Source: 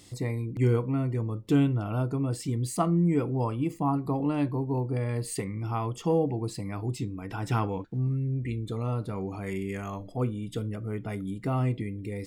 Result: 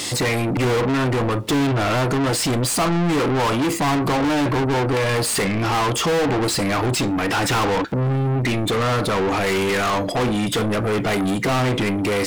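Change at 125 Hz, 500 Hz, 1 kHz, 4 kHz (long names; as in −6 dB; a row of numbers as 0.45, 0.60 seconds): +5.0, +11.5, +13.5, +22.5 decibels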